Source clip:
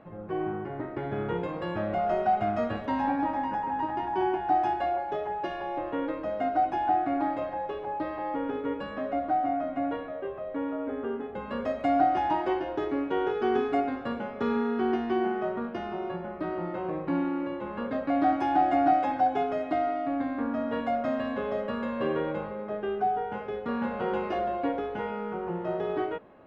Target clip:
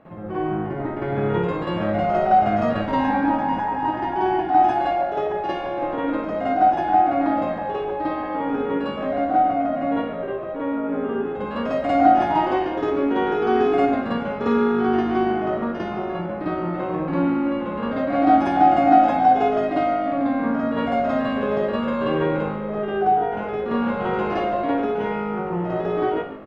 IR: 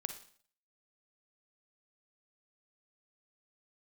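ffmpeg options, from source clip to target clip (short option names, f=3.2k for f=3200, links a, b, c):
-filter_complex "[0:a]asplit=6[a][b][c][d][e][f];[b]adelay=140,afreqshift=-52,volume=-15dB[g];[c]adelay=280,afreqshift=-104,volume=-20.8dB[h];[d]adelay=420,afreqshift=-156,volume=-26.7dB[i];[e]adelay=560,afreqshift=-208,volume=-32.5dB[j];[f]adelay=700,afreqshift=-260,volume=-38.4dB[k];[a][g][h][i][j][k]amix=inputs=6:normalize=0,asplit=2[l][m];[1:a]atrim=start_sample=2205,adelay=52[n];[m][n]afir=irnorm=-1:irlink=0,volume=8dB[o];[l][o]amix=inputs=2:normalize=0"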